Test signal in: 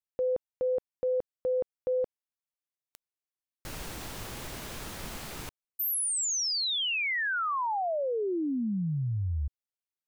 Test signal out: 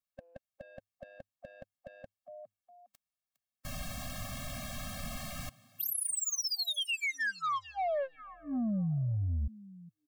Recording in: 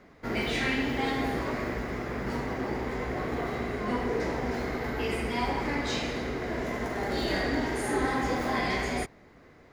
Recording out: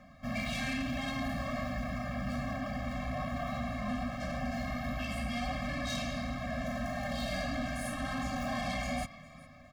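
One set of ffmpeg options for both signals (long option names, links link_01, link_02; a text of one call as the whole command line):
ffmpeg -i in.wav -filter_complex "[0:a]asplit=3[link_01][link_02][link_03];[link_02]adelay=408,afreqshift=100,volume=-23dB[link_04];[link_03]adelay=816,afreqshift=200,volume=-32.9dB[link_05];[link_01][link_04][link_05]amix=inputs=3:normalize=0,asoftclip=type=tanh:threshold=-31dB,afftfilt=real='re*eq(mod(floor(b*sr/1024/260),2),0)':imag='im*eq(mod(floor(b*sr/1024/260),2),0)':win_size=1024:overlap=0.75,volume=2.5dB" out.wav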